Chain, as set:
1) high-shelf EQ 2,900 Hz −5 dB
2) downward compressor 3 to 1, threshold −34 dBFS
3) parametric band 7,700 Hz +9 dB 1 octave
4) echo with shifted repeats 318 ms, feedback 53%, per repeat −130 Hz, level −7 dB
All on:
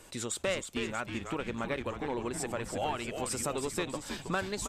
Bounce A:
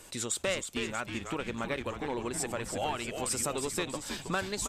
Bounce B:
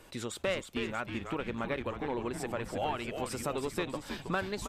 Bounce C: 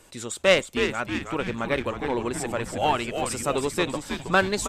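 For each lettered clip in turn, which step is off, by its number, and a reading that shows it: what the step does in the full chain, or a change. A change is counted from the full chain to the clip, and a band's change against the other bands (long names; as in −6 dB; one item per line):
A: 1, 8 kHz band +4.0 dB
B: 3, 8 kHz band −8.0 dB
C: 2, average gain reduction 6.5 dB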